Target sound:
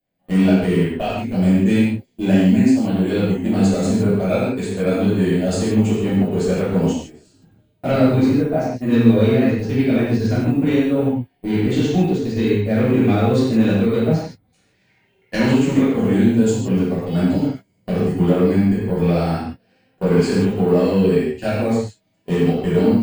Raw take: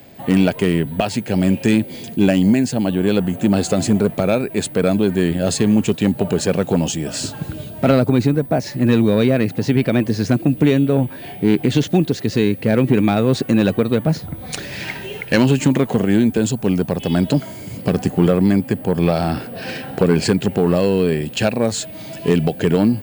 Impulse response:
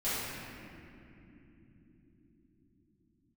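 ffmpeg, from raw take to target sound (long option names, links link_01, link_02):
-filter_complex "[0:a]agate=range=-30dB:threshold=-19dB:ratio=16:detection=peak[link_01];[1:a]atrim=start_sample=2205,afade=type=out:start_time=0.23:duration=0.01,atrim=end_sample=10584[link_02];[link_01][link_02]afir=irnorm=-1:irlink=0,volume=-8dB"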